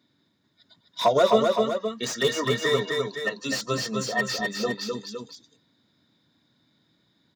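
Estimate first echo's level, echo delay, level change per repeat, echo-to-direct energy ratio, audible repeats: -3.5 dB, 256 ms, -5.0 dB, -2.5 dB, 2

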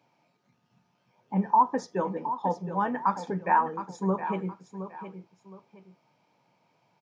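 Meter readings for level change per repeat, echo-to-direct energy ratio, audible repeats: -10.5 dB, -10.5 dB, 2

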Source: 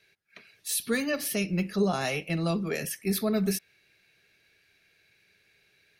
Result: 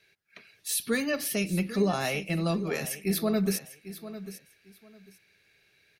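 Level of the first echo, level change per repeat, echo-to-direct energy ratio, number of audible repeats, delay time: -14.0 dB, -13.5 dB, -14.0 dB, 2, 798 ms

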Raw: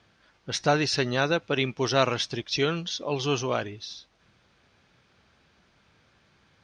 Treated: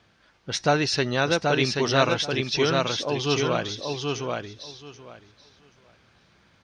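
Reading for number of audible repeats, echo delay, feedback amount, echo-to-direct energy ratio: 3, 781 ms, 17%, -3.5 dB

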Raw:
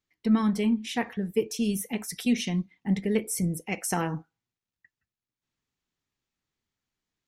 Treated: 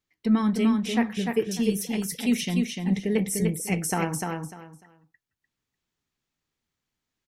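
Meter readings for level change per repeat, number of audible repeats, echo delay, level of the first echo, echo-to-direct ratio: -13.0 dB, 3, 298 ms, -4.0 dB, -4.0 dB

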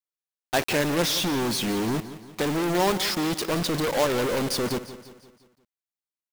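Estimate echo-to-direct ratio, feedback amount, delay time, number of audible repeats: -13.0 dB, 49%, 173 ms, 4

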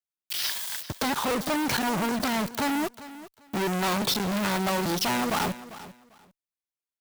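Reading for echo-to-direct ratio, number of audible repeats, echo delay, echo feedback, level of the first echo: -16.0 dB, 2, 396 ms, 20%, -16.0 dB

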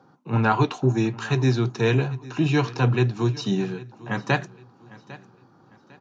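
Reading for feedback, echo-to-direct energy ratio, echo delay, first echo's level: 33%, -19.0 dB, 801 ms, -19.5 dB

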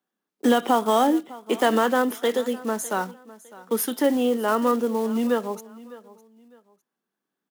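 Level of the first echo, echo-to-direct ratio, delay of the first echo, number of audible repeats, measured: -19.5 dB, -19.0 dB, 605 ms, 2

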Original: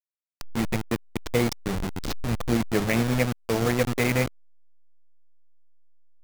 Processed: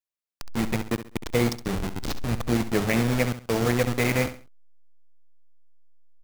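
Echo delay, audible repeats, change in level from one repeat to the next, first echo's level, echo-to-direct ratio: 67 ms, 3, -10.5 dB, -12.0 dB, -11.5 dB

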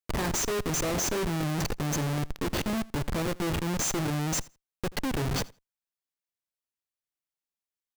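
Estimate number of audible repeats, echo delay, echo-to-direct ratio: 1, 82 ms, -22.5 dB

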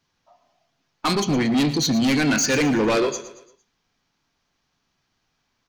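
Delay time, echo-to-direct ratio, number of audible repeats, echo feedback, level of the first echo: 114 ms, -13.0 dB, 4, 45%, -14.0 dB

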